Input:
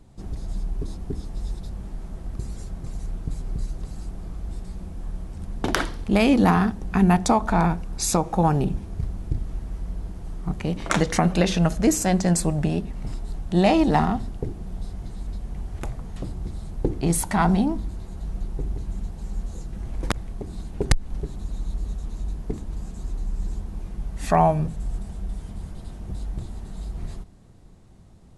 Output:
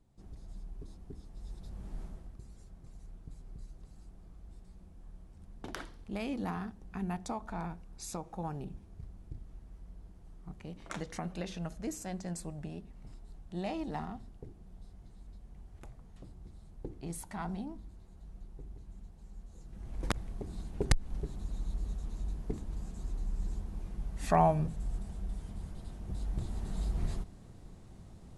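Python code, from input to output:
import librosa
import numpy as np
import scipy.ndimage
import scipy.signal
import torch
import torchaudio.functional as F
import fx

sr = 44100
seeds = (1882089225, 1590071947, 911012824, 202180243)

y = fx.gain(x, sr, db=fx.line((1.34, -17.0), (2.01, -7.0), (2.38, -19.0), (19.49, -19.0), (20.09, -7.5), (26.03, -7.5), (26.72, -1.0)))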